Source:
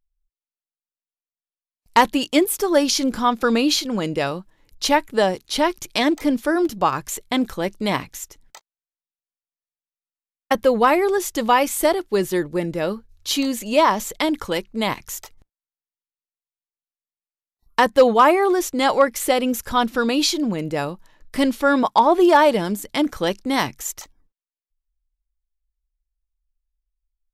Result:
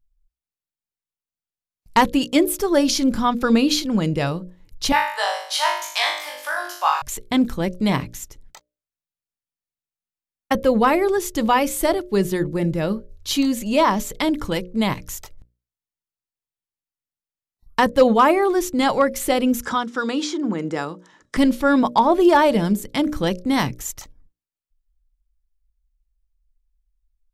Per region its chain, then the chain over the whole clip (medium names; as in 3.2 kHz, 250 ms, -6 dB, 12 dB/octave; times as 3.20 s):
4.92–7.02 s: inverse Chebyshev high-pass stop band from 230 Hz, stop band 60 dB + flutter echo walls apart 3.4 m, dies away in 0.6 s
19.62–21.37 s: cabinet simulation 330–7800 Hz, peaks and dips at 610 Hz -7 dB, 1.3 kHz +3 dB, 2.6 kHz -8 dB, 4.3 kHz -8 dB + three bands compressed up and down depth 70%
whole clip: tone controls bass +11 dB, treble 0 dB; hum notches 60/120/180/240/300/360/420/480/540/600 Hz; trim -1.5 dB